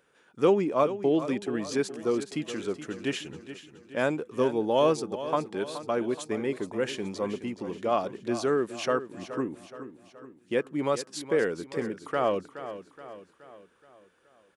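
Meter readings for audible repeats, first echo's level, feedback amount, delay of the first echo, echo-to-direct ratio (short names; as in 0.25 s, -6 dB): 4, -12.5 dB, 50%, 0.423 s, -11.5 dB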